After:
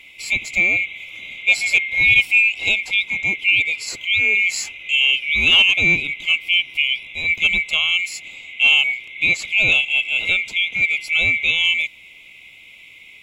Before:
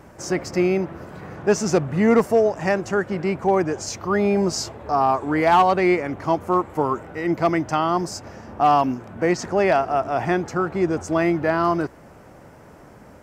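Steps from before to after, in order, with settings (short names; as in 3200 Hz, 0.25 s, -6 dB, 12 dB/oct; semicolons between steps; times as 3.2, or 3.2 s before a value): band-swap scrambler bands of 2000 Hz; gain +2 dB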